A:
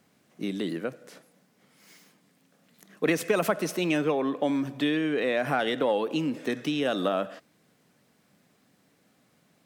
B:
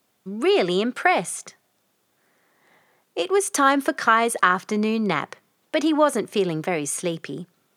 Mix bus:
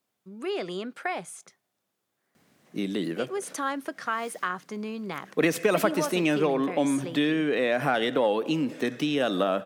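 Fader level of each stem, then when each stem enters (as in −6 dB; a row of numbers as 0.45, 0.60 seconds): +1.5, −12.0 decibels; 2.35, 0.00 seconds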